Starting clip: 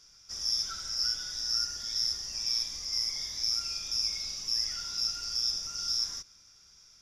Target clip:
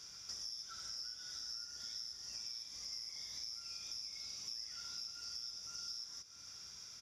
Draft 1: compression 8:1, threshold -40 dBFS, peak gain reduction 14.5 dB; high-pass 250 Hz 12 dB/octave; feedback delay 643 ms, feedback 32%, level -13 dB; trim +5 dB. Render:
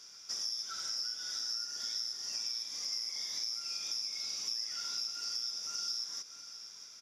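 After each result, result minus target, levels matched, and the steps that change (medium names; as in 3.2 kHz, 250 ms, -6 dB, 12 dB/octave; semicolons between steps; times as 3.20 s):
125 Hz band -12.5 dB; compression: peak gain reduction -8.5 dB
change: high-pass 73 Hz 12 dB/octave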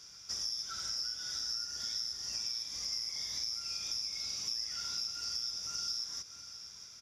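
compression: peak gain reduction -8.5 dB
change: compression 8:1, threshold -49.5 dBFS, peak gain reduction 23 dB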